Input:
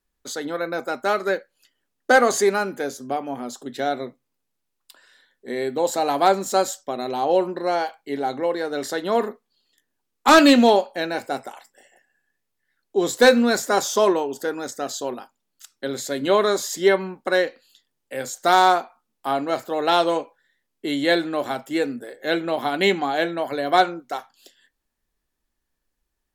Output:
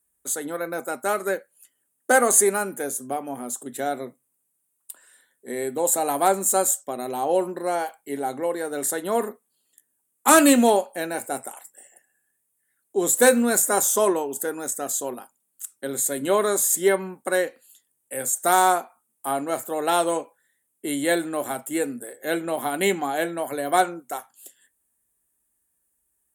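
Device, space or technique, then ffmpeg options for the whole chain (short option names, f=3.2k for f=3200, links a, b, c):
budget condenser microphone: -af "highpass=67,highshelf=f=6.7k:t=q:w=3:g=13,volume=-2.5dB"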